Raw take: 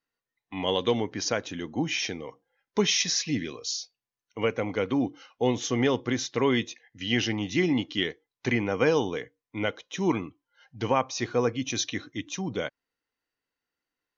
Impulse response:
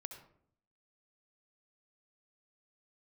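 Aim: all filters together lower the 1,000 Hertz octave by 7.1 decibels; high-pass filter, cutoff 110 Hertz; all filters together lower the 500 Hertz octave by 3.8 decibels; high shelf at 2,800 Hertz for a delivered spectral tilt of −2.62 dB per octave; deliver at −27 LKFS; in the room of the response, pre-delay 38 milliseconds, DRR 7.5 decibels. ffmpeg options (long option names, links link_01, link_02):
-filter_complex "[0:a]highpass=110,equalizer=frequency=500:width_type=o:gain=-3,equalizer=frequency=1000:width_type=o:gain=-9,highshelf=frequency=2800:gain=6.5,asplit=2[link_01][link_02];[1:a]atrim=start_sample=2205,adelay=38[link_03];[link_02][link_03]afir=irnorm=-1:irlink=0,volume=-3.5dB[link_04];[link_01][link_04]amix=inputs=2:normalize=0"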